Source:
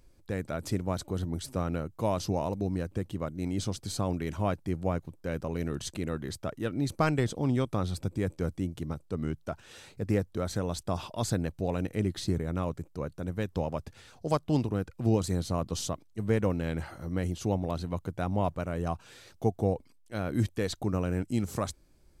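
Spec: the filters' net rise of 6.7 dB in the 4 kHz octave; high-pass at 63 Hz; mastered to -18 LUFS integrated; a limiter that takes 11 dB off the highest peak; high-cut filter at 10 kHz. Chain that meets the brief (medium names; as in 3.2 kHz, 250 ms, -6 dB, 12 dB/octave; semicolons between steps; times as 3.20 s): high-pass 63 Hz; low-pass 10 kHz; peaking EQ 4 kHz +8 dB; trim +18 dB; peak limiter -5.5 dBFS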